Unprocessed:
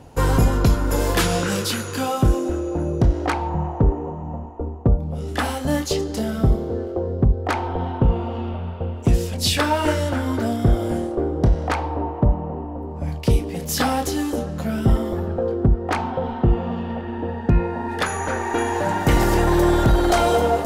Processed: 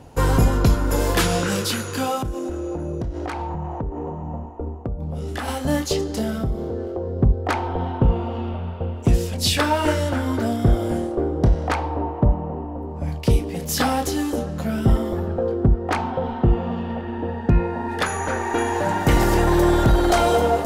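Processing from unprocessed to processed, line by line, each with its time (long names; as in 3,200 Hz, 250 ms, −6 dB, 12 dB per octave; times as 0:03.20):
0:02.22–0:05.48: downward compressor 12 to 1, threshold −23 dBFS
0:06.37–0:07.16: downward compressor 2.5 to 1, threshold −23 dBFS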